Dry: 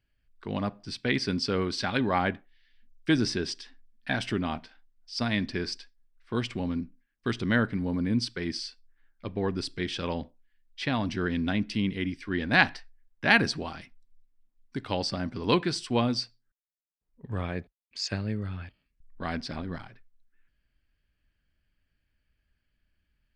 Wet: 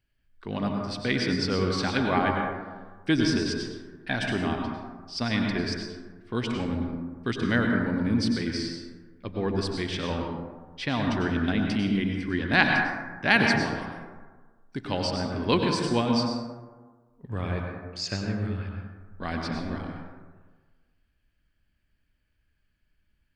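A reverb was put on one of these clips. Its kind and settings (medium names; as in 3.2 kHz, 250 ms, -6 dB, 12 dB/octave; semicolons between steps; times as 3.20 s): plate-style reverb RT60 1.4 s, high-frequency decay 0.35×, pre-delay 85 ms, DRR 1.5 dB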